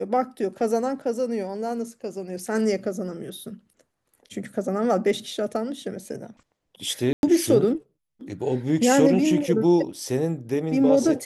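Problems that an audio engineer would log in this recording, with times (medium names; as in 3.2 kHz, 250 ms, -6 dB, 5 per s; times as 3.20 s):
7.13–7.23 s: dropout 101 ms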